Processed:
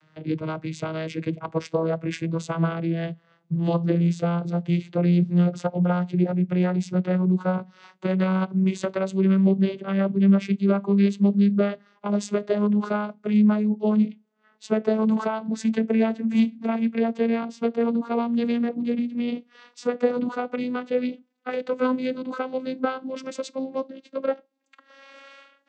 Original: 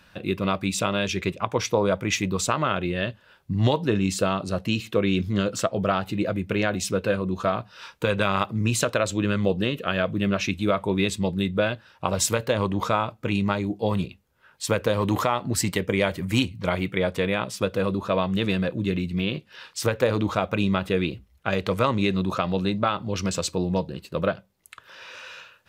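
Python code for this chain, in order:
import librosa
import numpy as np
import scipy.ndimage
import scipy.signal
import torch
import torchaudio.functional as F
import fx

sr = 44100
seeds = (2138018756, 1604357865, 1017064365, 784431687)

y = fx.vocoder_glide(x, sr, note=51, semitones=10)
y = F.gain(torch.from_numpy(y), 2.5).numpy()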